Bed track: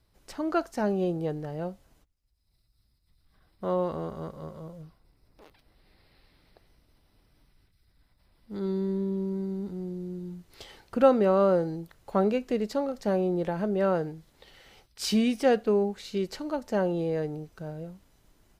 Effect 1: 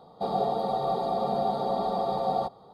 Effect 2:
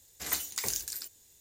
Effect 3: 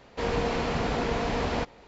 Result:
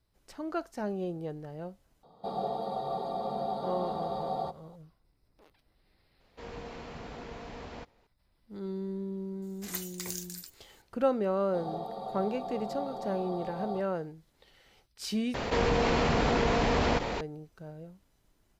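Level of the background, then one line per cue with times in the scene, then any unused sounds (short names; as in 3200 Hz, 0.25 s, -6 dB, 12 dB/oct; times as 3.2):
bed track -7 dB
2.03 add 1 -6.5 dB
6.2 add 3 -15.5 dB
9.42 add 2 -6 dB
11.33 add 1 -11 dB
15.34 replace with 3 -0.5 dB + fast leveller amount 70%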